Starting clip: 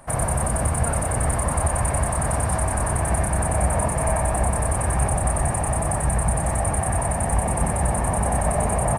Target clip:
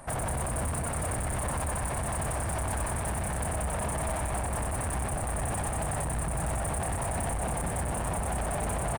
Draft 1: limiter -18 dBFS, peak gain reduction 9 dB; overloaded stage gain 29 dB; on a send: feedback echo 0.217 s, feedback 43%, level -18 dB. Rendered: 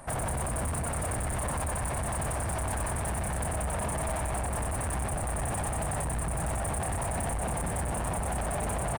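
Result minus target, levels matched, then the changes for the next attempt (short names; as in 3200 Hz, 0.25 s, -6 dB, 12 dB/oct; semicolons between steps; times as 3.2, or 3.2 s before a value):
echo-to-direct -6.5 dB
change: feedback echo 0.217 s, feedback 43%, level -11.5 dB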